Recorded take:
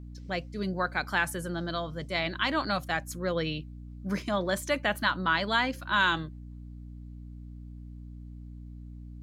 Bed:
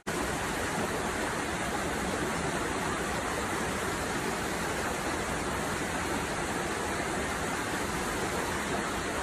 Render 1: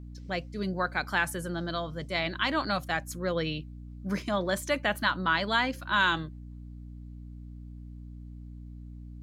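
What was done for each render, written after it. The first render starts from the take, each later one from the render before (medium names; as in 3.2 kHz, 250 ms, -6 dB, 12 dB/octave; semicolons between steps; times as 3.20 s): no audible change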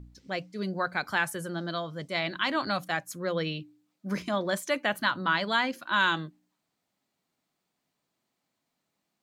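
de-hum 60 Hz, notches 5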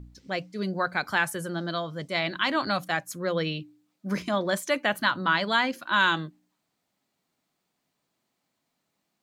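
trim +2.5 dB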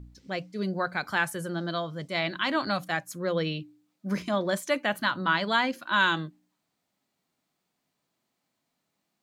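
harmonic-percussive split percussive -3 dB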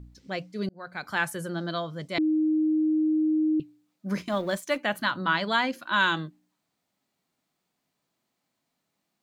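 0.69–1.23 s: fade in; 2.18–3.60 s: bleep 311 Hz -20.5 dBFS; 4.21–4.79 s: companding laws mixed up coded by A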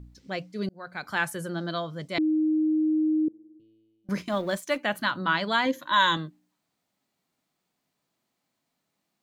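3.28–4.09 s: feedback comb 110 Hz, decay 1.8 s, mix 100%; 5.65–6.17 s: rippled EQ curve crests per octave 1.1, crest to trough 12 dB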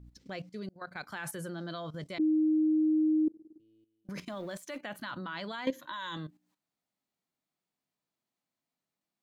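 peak limiter -19.5 dBFS, peak gain reduction 11 dB; level held to a coarse grid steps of 13 dB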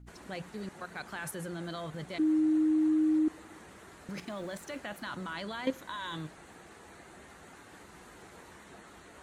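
add bed -20.5 dB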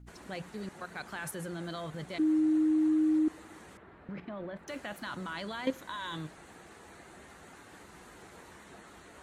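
3.77–4.68 s: distance through air 490 m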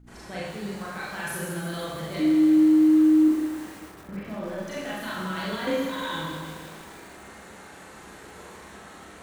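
Schroeder reverb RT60 1 s, combs from 29 ms, DRR -6.5 dB; bit-crushed delay 156 ms, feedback 80%, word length 7-bit, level -9.5 dB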